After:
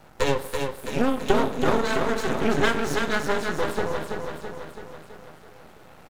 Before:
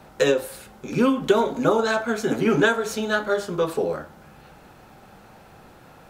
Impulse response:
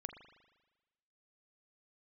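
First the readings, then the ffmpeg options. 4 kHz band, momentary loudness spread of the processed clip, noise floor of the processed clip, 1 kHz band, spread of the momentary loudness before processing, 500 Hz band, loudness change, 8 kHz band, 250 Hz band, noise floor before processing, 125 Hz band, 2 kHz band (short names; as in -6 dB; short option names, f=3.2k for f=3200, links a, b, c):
0.0 dB, 15 LU, -49 dBFS, 0.0 dB, 9 LU, -3.5 dB, -3.0 dB, -1.0 dB, -3.0 dB, -49 dBFS, 0.0 dB, -1.5 dB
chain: -filter_complex "[0:a]aecho=1:1:331|662|993|1324|1655|1986|2317|2648:0.562|0.326|0.189|0.11|0.0636|0.0369|0.0214|0.0124,asplit=2[a][b];[1:a]atrim=start_sample=2205[c];[b][c]afir=irnorm=-1:irlink=0,volume=2.5dB[d];[a][d]amix=inputs=2:normalize=0,aeval=exprs='max(val(0),0)':c=same,volume=-5dB"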